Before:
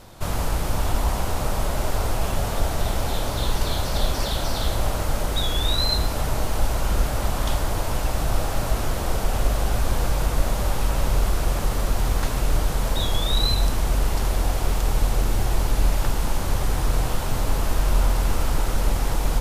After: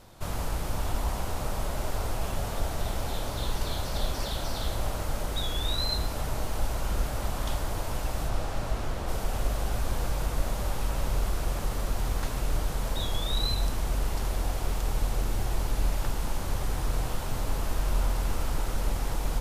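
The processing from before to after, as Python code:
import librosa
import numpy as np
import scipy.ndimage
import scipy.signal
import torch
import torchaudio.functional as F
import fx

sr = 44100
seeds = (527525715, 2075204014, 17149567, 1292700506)

y = fx.high_shelf(x, sr, hz=fx.line((8.27, 11000.0), (9.07, 6700.0)), db=-10.5, at=(8.27, 9.07), fade=0.02)
y = y * 10.0 ** (-7.0 / 20.0)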